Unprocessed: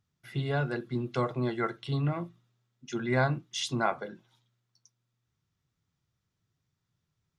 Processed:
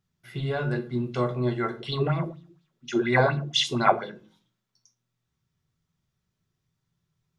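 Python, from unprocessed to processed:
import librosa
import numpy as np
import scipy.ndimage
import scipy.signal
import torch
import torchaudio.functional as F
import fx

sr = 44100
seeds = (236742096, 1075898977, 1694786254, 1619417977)

y = fx.room_shoebox(x, sr, seeds[0], volume_m3=210.0, walls='furnished', distance_m=1.1)
y = fx.bell_lfo(y, sr, hz=4.2, low_hz=350.0, high_hz=4100.0, db=15, at=(1.8, 4.12))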